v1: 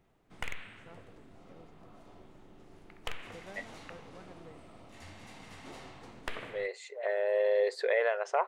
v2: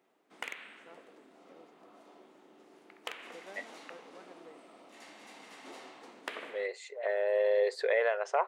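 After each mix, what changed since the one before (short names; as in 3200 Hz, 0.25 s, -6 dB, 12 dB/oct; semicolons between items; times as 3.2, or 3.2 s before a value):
master: add HPF 260 Hz 24 dB/oct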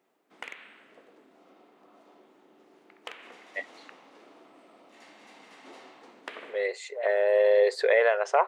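first voice: muted; second voice +6.5 dB; background: add high shelf 8800 Hz -11 dB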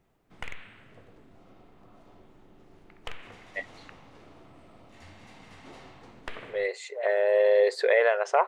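master: remove HPF 260 Hz 24 dB/oct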